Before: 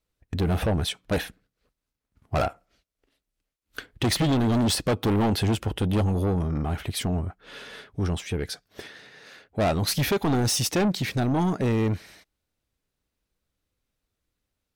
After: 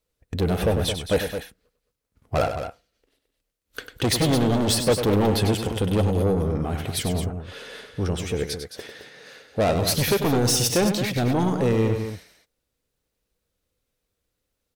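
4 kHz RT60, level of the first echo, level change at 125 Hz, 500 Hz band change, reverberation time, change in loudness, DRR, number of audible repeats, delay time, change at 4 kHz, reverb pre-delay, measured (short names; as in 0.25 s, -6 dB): none, -8.5 dB, +1.0 dB, +5.5 dB, none, +2.5 dB, none, 2, 98 ms, +3.0 dB, none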